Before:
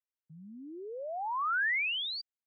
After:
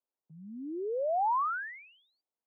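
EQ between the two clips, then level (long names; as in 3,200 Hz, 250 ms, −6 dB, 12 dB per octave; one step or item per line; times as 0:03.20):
high-pass filter 260 Hz 12 dB per octave
low-pass filter 1,000 Hz 24 dB per octave
+8.5 dB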